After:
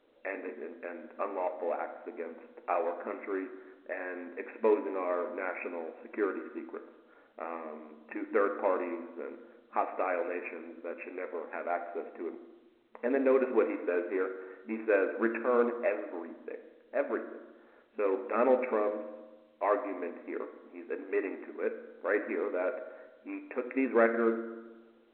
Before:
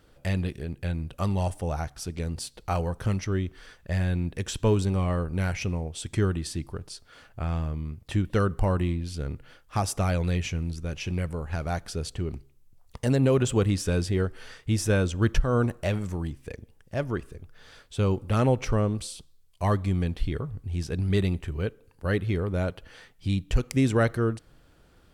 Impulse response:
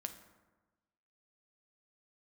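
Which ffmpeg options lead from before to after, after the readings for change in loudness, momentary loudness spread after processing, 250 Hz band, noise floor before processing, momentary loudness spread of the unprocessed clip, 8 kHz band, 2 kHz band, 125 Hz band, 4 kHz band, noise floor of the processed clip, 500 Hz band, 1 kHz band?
-5.5 dB, 16 LU, -7.5 dB, -58 dBFS, 12 LU, under -40 dB, -1.5 dB, under -35 dB, under -25 dB, -62 dBFS, 0.0 dB, -1.0 dB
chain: -filter_complex "[0:a]adynamicsmooth=sensitivity=5:basefreq=770,equalizer=f=500:t=o:w=1:g=7,equalizer=f=1k:t=o:w=1:g=4,equalizer=f=2k:t=o:w=1:g=7[a];[1:a]atrim=start_sample=2205[b];[a][b]afir=irnorm=-1:irlink=0,afftfilt=real='re*between(b*sr/4096,220,2700)':imag='im*between(b*sr/4096,220,2700)':win_size=4096:overlap=0.75,volume=-4.5dB" -ar 8000 -c:a pcm_alaw

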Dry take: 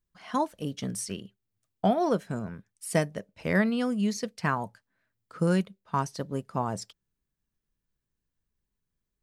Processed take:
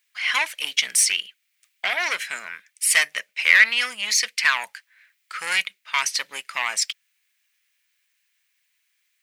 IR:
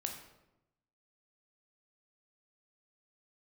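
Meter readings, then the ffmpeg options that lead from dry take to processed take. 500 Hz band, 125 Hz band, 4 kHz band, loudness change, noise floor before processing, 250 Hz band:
-11.0 dB, under -30 dB, +20.0 dB, +9.0 dB, -85 dBFS, under -20 dB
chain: -af "apsyclip=21dB,asoftclip=type=tanh:threshold=-5dB,highpass=f=2.2k:t=q:w=3.3,volume=-3dB"

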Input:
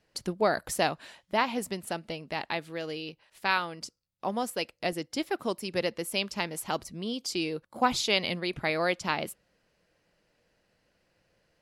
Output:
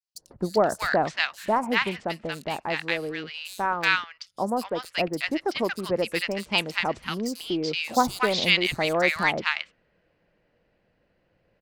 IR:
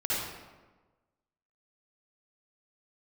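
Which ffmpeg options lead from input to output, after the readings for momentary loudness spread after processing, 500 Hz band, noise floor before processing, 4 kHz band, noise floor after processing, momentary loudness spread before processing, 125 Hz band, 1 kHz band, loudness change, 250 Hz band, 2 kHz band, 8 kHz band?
10 LU, +4.5 dB, -74 dBFS, +5.0 dB, -70 dBFS, 10 LU, +4.0 dB, +4.5 dB, +5.0 dB, +4.5 dB, +7.5 dB, -1.0 dB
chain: -filter_complex "[0:a]adynamicequalizer=threshold=0.00794:dfrequency=1900:dqfactor=0.76:tfrequency=1900:tqfactor=0.76:attack=5:release=100:ratio=0.375:range=2.5:mode=boostabove:tftype=bell,adynamicsmooth=sensitivity=7.5:basefreq=2.9k,acrossover=split=1200|5600[a][b][c];[a]adelay=150[d];[b]adelay=380[e];[d][e][c]amix=inputs=3:normalize=0,volume=4.5dB"

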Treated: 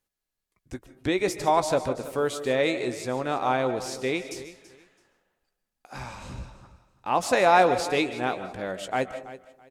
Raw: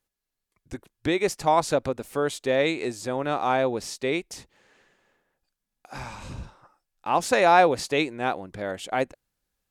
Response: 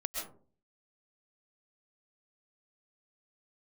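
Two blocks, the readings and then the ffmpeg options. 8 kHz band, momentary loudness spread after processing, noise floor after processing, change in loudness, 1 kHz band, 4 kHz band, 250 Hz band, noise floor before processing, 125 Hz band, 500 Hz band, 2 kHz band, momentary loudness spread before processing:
-1.0 dB, 20 LU, -85 dBFS, -1.0 dB, -1.0 dB, -1.0 dB, -0.5 dB, -85 dBFS, -1.0 dB, -0.5 dB, -1.0 dB, 21 LU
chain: -filter_complex "[0:a]aecho=1:1:331|662:0.15|0.0344,asplit=2[a][b];[1:a]atrim=start_sample=2205,adelay=16[c];[b][c]afir=irnorm=-1:irlink=0,volume=-11dB[d];[a][d]amix=inputs=2:normalize=0,volume=-1.5dB"

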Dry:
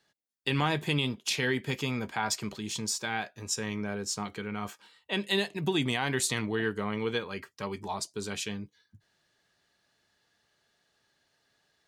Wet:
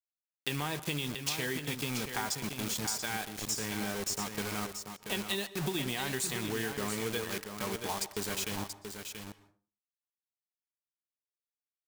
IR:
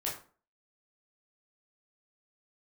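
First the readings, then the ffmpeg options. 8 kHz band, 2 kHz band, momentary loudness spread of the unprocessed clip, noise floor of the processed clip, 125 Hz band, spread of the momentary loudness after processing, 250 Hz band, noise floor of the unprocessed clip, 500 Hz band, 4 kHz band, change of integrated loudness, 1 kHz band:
0.0 dB, -4.0 dB, 9 LU, under -85 dBFS, -5.0 dB, 7 LU, -4.5 dB, -74 dBFS, -4.5 dB, -2.5 dB, -3.0 dB, -3.5 dB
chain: -filter_complex "[0:a]acrusher=bits=5:mix=0:aa=0.000001,highshelf=f=5.9k:g=6,acompressor=threshold=-31dB:ratio=6,aecho=1:1:682:0.422,asplit=2[a][b];[1:a]atrim=start_sample=2205,highshelf=f=12k:g=-11,adelay=120[c];[b][c]afir=irnorm=-1:irlink=0,volume=-19dB[d];[a][d]amix=inputs=2:normalize=0"

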